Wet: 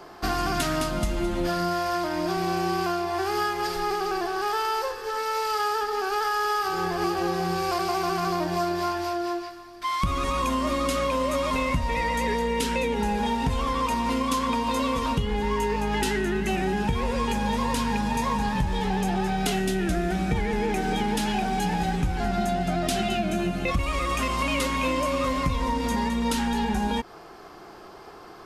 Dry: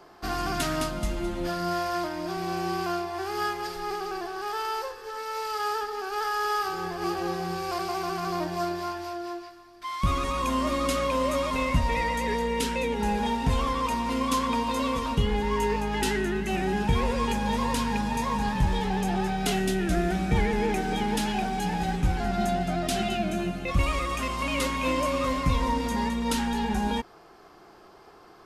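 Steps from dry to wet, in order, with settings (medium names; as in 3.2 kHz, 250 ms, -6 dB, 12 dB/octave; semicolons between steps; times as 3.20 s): compression, threshold -29 dBFS, peak gain reduction 11 dB; trim +7 dB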